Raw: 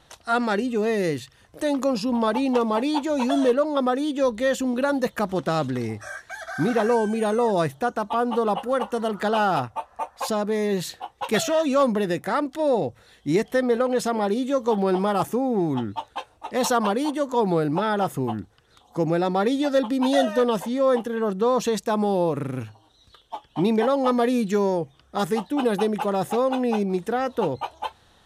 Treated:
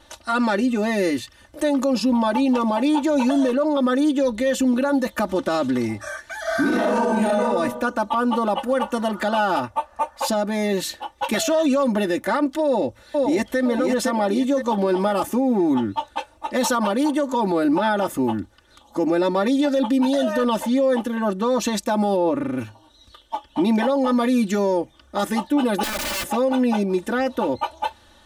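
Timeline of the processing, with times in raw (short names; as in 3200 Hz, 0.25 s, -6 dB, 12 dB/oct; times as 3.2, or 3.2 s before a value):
6.4–7.43 reverb throw, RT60 0.87 s, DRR -6 dB
12.63–13.59 echo throw 0.51 s, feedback 35%, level -4.5 dB
22.16–22.58 LPF 3000 Hz 6 dB/oct
25.83–26.24 wrapped overs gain 26.5 dB
whole clip: comb 3.4 ms, depth 89%; limiter -15 dBFS; gain +2.5 dB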